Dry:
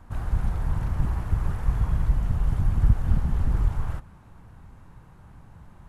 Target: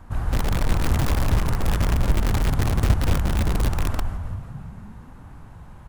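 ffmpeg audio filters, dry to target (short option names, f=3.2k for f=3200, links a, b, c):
-filter_complex "[0:a]asettb=1/sr,asplit=3[a][b][c];[a]atrim=end=0.504[d];[b]atrim=start=0.5:end=1.48,asetpts=PTS-STARTPTS,afade=t=in:d=0.004:c=qsin,afade=t=out:st=0.976:d=0.004:c=qsin,aeval=exprs='0.316*(cos(1*acos(clip(val(0)/0.316,-1,1)))-cos(1*PI/2))+0.0178*(cos(2*acos(clip(val(0)/0.316,-1,1)))-cos(2*PI/2))+0.0251*(cos(5*acos(clip(val(0)/0.316,-1,1)))-cos(5*PI/2))+0.00562*(cos(7*acos(clip(val(0)/0.316,-1,1)))-cos(7*PI/2))+0.0398*(cos(8*acos(clip(val(0)/0.316,-1,1)))-cos(8*PI/2))':c=same[e];[c]atrim=start=1.476[f];[d][e]acrossfade=d=0.004:c1=hsin:c2=qsin[g];[g][f]acrossfade=d=0.004:c1=qsin:c2=hsin,asplit=3[h][i][j];[h]afade=t=out:st=2.6:d=0.02[k];[i]highpass=f=43:w=0.5412,highpass=f=43:w=1.3066,afade=t=in:st=2.6:d=0.02,afade=t=out:st=3.64:d=0.02[l];[j]afade=t=in:st=3.64:d=0.02[m];[k][l][m]amix=inputs=3:normalize=0,asplit=9[n][o][p][q][r][s][t][u][v];[o]adelay=175,afreqshift=-38,volume=-5dB[w];[p]adelay=350,afreqshift=-76,volume=-9.6dB[x];[q]adelay=525,afreqshift=-114,volume=-14.2dB[y];[r]adelay=700,afreqshift=-152,volume=-18.7dB[z];[s]adelay=875,afreqshift=-190,volume=-23.3dB[aa];[t]adelay=1050,afreqshift=-228,volume=-27.9dB[ab];[u]adelay=1225,afreqshift=-266,volume=-32.5dB[ac];[v]adelay=1400,afreqshift=-304,volume=-37.1dB[ad];[n][w][x][y][z][aa][ab][ac][ad]amix=inputs=9:normalize=0,asplit=2[ae][af];[af]aeval=exprs='(mod(8.41*val(0)+1,2)-1)/8.41':c=same,volume=-3.5dB[ag];[ae][ag]amix=inputs=2:normalize=0"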